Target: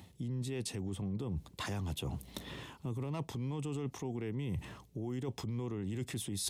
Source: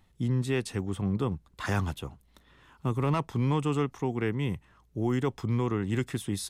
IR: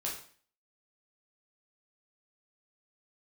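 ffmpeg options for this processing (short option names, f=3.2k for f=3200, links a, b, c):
-af "highpass=f=76:w=0.5412,highpass=f=76:w=1.3066,equalizer=f=1.4k:w=1.4:g=-10.5,alimiter=level_in=10dB:limit=-24dB:level=0:latency=1:release=132,volume=-10dB,areverse,acompressor=threshold=-55dB:ratio=5,areverse,volume=18dB"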